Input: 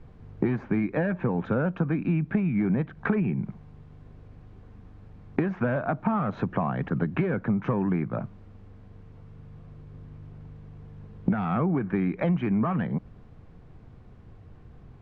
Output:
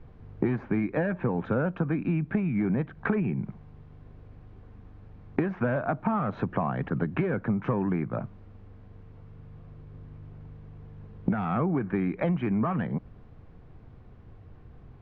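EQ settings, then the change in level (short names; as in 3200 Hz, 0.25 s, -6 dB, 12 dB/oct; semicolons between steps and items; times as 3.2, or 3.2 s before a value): air absorption 100 m; bell 180 Hz -2.5 dB; 0.0 dB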